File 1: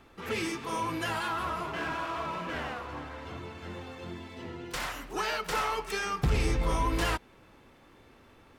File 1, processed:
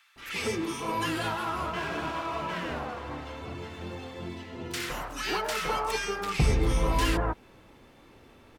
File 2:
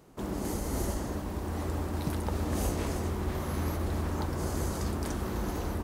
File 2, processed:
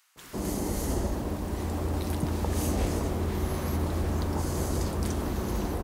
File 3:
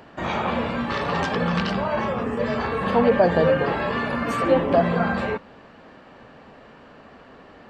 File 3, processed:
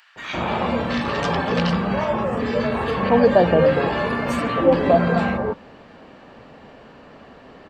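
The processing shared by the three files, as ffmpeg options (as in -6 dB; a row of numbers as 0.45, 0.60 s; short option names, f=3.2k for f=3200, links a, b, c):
-filter_complex "[0:a]acrossover=split=1400[a][b];[a]adelay=160[c];[c][b]amix=inputs=2:normalize=0,volume=3dB"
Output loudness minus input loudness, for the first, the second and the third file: +2.0, +3.0, +2.5 LU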